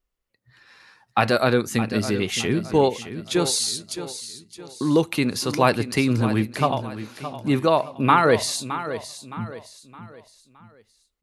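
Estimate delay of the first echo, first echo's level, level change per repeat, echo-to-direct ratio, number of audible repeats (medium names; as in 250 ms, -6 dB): 616 ms, -12.0 dB, -8.0 dB, -11.5 dB, 3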